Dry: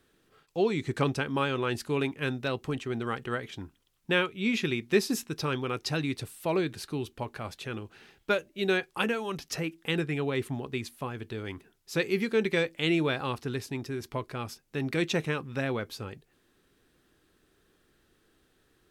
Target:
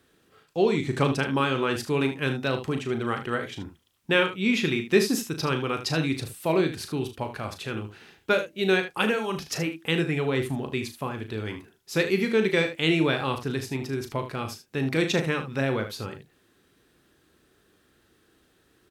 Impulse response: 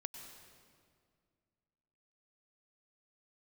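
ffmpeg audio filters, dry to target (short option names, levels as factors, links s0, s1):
-filter_complex "[0:a]highpass=53,asplit=2[s0][s1];[s1]aecho=0:1:37|76:0.376|0.282[s2];[s0][s2]amix=inputs=2:normalize=0,volume=1.5"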